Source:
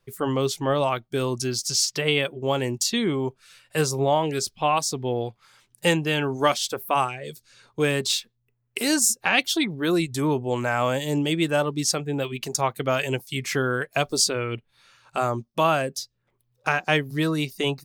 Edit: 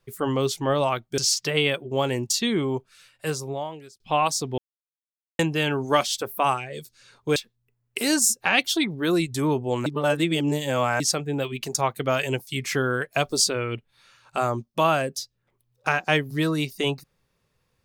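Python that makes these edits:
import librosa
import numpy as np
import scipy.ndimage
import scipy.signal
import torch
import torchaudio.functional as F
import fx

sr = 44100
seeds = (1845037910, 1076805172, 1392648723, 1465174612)

y = fx.edit(x, sr, fx.cut(start_s=1.18, length_s=0.51),
    fx.fade_out_span(start_s=3.28, length_s=1.23),
    fx.silence(start_s=5.09, length_s=0.81),
    fx.cut(start_s=7.87, length_s=0.29),
    fx.reverse_span(start_s=10.66, length_s=1.14), tone=tone)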